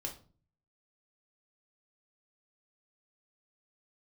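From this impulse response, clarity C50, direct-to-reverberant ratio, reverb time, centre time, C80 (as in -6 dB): 10.5 dB, 0.5 dB, 0.40 s, 16 ms, 17.0 dB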